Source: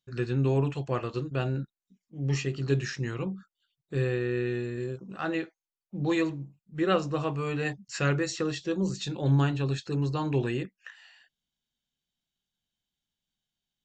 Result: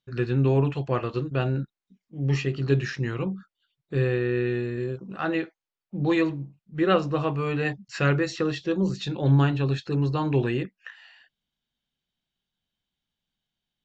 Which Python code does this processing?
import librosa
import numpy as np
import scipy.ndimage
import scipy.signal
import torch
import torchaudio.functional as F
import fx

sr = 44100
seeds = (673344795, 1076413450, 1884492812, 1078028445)

y = scipy.signal.sosfilt(scipy.signal.butter(2, 4200.0, 'lowpass', fs=sr, output='sos'), x)
y = F.gain(torch.from_numpy(y), 4.0).numpy()